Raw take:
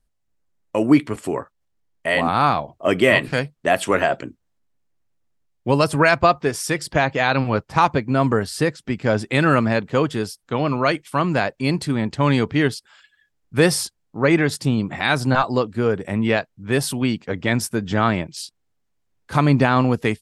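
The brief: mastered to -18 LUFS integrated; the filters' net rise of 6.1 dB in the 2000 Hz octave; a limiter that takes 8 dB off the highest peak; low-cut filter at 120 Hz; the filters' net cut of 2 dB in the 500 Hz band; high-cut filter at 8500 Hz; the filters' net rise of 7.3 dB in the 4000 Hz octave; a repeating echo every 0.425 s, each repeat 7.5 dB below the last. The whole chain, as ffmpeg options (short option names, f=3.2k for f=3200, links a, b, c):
-af "highpass=120,lowpass=8.5k,equalizer=f=500:t=o:g=-3,equalizer=f=2k:t=o:g=6,equalizer=f=4k:t=o:g=7.5,alimiter=limit=-4dB:level=0:latency=1,aecho=1:1:425|850|1275|1700|2125:0.422|0.177|0.0744|0.0312|0.0131,volume=1dB"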